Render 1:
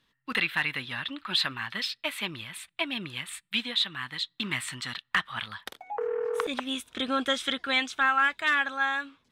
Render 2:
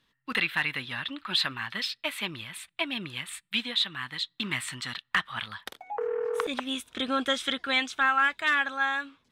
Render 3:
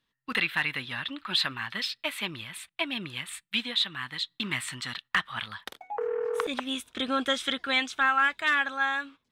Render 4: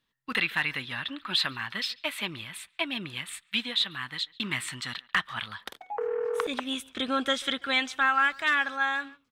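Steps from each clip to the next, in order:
no audible change
gate -47 dBFS, range -8 dB
speakerphone echo 140 ms, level -21 dB

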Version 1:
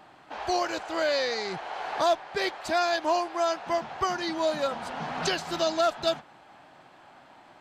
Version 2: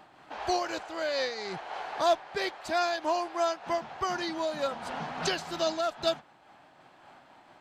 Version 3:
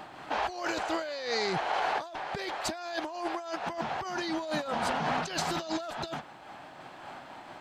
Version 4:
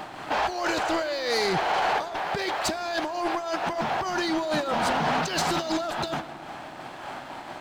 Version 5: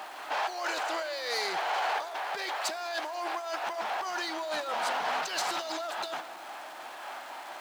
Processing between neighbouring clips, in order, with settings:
random flutter of the level, depth 60%
compressor with a negative ratio -38 dBFS, ratio -1; trim +4 dB
waveshaping leveller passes 2; on a send at -14 dB: reverberation RT60 3.3 s, pre-delay 3 ms
jump at every zero crossing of -39 dBFS; high-pass 600 Hz 12 dB/octave; trim -5 dB

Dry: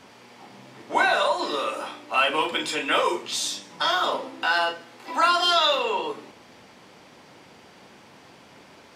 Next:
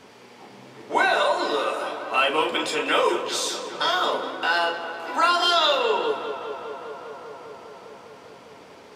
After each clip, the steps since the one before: peaking EQ 430 Hz +6 dB 0.42 oct; tape echo 201 ms, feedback 88%, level -11 dB, low-pass 3.4 kHz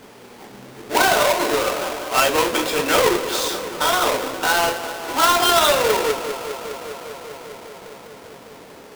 square wave that keeps the level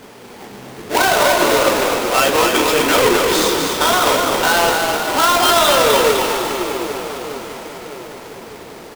in parallel at -3 dB: compressor with a negative ratio -19 dBFS; on the sum: frequency-shifting echo 253 ms, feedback 57%, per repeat -37 Hz, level -4.5 dB; trim -1 dB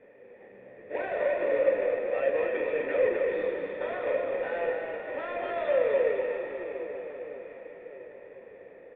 cascade formant filter e; feedback comb 98 Hz, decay 1.5 s, harmonics all, mix 70%; trim +5.5 dB

